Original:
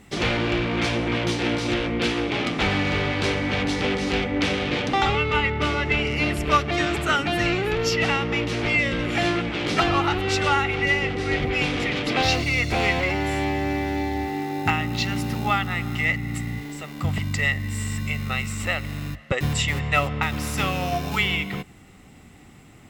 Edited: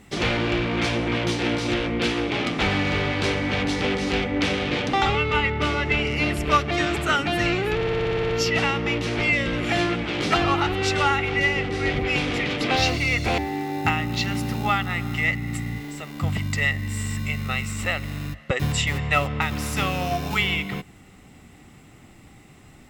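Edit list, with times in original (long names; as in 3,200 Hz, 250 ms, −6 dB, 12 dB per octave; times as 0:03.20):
0:07.75: stutter 0.06 s, 10 plays
0:12.84–0:14.19: remove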